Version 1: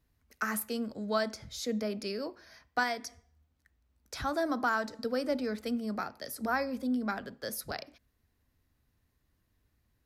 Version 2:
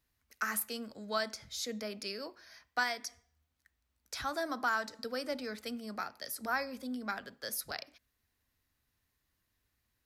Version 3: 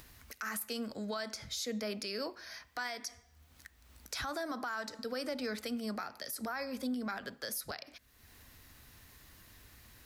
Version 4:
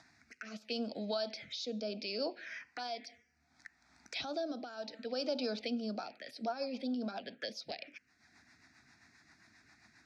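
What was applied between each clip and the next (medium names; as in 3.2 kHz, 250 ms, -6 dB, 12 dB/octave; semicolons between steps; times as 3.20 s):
tilt shelf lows -5.5 dB, about 810 Hz; trim -4 dB
compression 2.5:1, threshold -40 dBFS, peak gain reduction 9.5 dB; peak limiter -35 dBFS, peak gain reduction 9.5 dB; upward compressor, threshold -49 dBFS; trim +6.5 dB
touch-sensitive phaser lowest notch 450 Hz, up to 2 kHz, full sweep at -34.5 dBFS; rotary cabinet horn 0.7 Hz, later 7.5 Hz, at 5.69 s; cabinet simulation 250–5600 Hz, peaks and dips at 410 Hz -4 dB, 700 Hz +6 dB, 1.1 kHz -10 dB, 2.4 kHz +5 dB; trim +5 dB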